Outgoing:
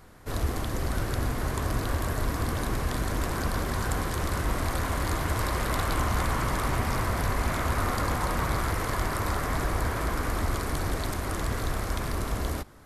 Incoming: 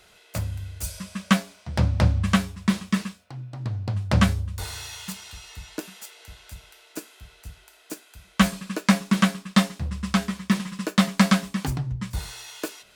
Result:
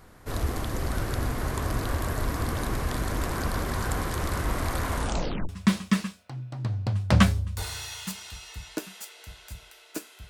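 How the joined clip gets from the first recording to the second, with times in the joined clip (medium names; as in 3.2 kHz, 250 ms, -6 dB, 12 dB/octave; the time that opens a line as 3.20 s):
outgoing
4.95 s: tape stop 0.54 s
5.49 s: go over to incoming from 2.50 s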